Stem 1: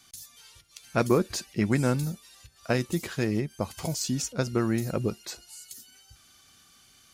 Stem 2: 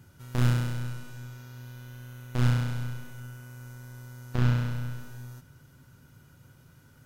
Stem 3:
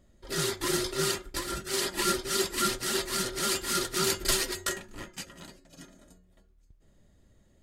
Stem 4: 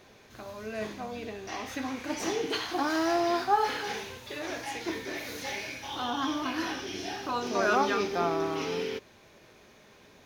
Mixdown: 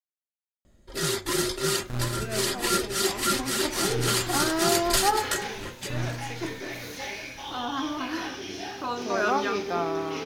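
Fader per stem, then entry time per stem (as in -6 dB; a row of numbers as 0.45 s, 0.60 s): mute, -7.5 dB, +2.5 dB, +0.5 dB; mute, 1.55 s, 0.65 s, 1.55 s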